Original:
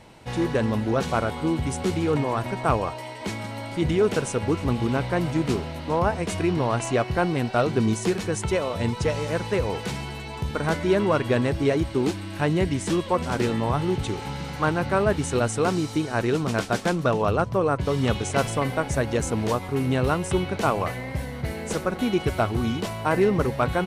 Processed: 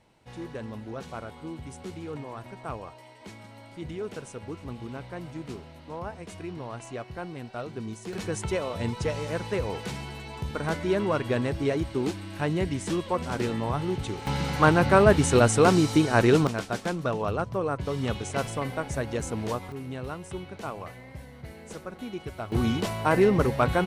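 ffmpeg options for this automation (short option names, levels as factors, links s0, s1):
-af "asetnsamples=n=441:p=0,asendcmd='8.13 volume volume -4.5dB;14.27 volume volume 4dB;16.47 volume volume -6dB;19.72 volume volume -13dB;22.52 volume volume 0dB',volume=0.2"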